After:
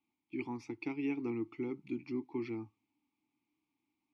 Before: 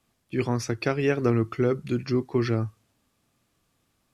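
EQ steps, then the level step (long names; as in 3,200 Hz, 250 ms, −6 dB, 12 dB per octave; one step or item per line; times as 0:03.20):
formant filter u
low-shelf EQ 79 Hz +6 dB
high-shelf EQ 2,100 Hz +8.5 dB
−2.5 dB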